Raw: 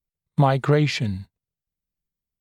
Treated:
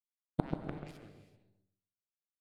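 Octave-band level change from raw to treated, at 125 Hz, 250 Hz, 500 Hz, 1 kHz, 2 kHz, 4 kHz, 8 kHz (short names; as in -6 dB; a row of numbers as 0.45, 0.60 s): -21.0 dB, -15.5 dB, -21.0 dB, -20.5 dB, -25.0 dB, -29.5 dB, n/a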